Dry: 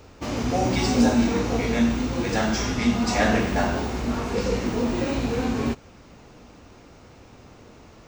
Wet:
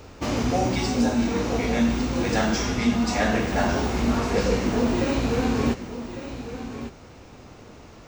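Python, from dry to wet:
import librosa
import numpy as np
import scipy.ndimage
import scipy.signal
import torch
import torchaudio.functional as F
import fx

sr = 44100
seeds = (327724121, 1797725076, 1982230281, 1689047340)

y = fx.rider(x, sr, range_db=4, speed_s=0.5)
y = y + 10.0 ** (-11.5 / 20.0) * np.pad(y, (int(1153 * sr / 1000.0), 0))[:len(y)]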